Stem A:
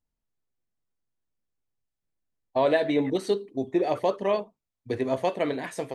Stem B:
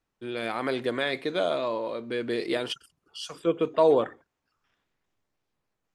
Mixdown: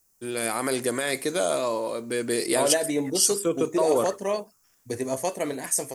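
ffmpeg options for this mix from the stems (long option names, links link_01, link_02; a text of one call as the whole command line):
ffmpeg -i stem1.wav -i stem2.wav -filter_complex "[0:a]volume=-2dB[link_01];[1:a]alimiter=limit=-17.5dB:level=0:latency=1:release=21,volume=2.5dB[link_02];[link_01][link_02]amix=inputs=2:normalize=0,aexciter=amount=14.8:drive=4:freq=5400" out.wav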